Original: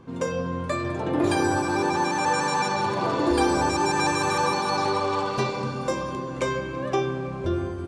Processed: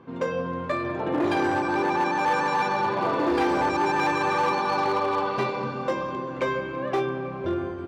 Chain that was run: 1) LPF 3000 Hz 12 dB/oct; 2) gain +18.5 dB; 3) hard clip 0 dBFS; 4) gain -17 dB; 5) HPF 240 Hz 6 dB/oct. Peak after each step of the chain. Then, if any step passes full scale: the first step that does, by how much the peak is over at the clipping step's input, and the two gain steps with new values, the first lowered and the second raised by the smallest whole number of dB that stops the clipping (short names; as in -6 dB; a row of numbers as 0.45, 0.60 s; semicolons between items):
-11.0, +7.5, 0.0, -17.0, -13.0 dBFS; step 2, 7.5 dB; step 2 +10.5 dB, step 4 -9 dB